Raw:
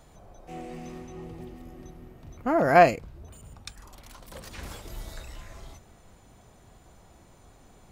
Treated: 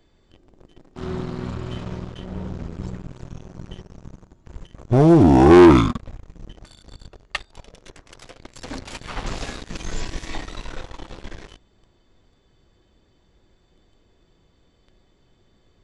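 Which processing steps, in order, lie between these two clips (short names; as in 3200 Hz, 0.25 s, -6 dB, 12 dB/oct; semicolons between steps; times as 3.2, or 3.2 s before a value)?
sample leveller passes 3; speed mistake 15 ips tape played at 7.5 ips; gain +1 dB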